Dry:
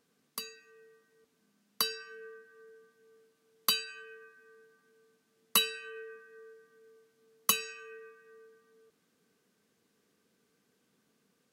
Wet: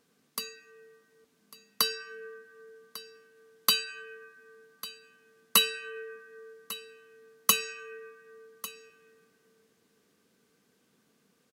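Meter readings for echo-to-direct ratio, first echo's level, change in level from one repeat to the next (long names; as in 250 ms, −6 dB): −17.0 dB, −17.0 dB, repeats not evenly spaced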